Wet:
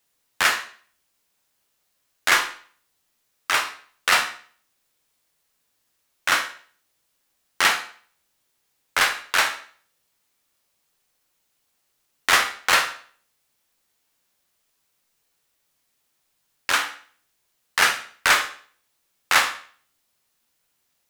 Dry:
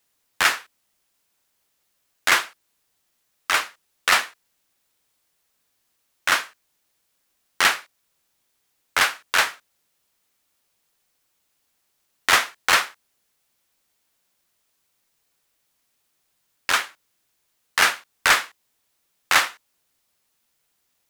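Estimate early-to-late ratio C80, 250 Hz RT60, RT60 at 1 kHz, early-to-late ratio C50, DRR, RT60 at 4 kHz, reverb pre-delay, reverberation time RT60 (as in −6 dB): 14.5 dB, 0.45 s, 0.45 s, 10.0 dB, 6.0 dB, 0.45 s, 14 ms, 0.50 s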